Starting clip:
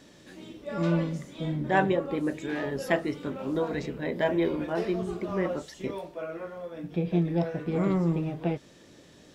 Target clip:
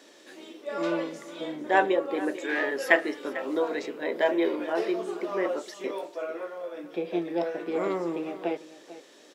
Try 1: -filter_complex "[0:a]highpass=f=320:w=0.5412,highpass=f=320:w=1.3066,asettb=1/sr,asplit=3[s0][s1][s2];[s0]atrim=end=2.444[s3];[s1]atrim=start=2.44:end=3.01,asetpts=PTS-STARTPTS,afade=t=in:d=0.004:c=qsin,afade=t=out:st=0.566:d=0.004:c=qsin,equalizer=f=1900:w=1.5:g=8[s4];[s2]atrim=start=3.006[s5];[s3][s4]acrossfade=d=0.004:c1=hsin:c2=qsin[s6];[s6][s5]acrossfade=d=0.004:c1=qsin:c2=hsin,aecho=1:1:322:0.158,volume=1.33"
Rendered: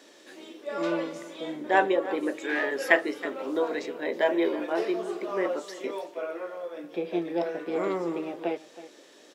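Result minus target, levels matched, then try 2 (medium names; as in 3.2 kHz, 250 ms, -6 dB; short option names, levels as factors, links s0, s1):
echo 124 ms early
-filter_complex "[0:a]highpass=f=320:w=0.5412,highpass=f=320:w=1.3066,asettb=1/sr,asplit=3[s0][s1][s2];[s0]atrim=end=2.444[s3];[s1]atrim=start=2.44:end=3.01,asetpts=PTS-STARTPTS,afade=t=in:d=0.004:c=qsin,afade=t=out:st=0.566:d=0.004:c=qsin,equalizer=f=1900:w=1.5:g=8[s4];[s2]atrim=start=3.006[s5];[s3][s4]acrossfade=d=0.004:c1=hsin:c2=qsin[s6];[s6][s5]acrossfade=d=0.004:c1=qsin:c2=hsin,aecho=1:1:446:0.158,volume=1.33"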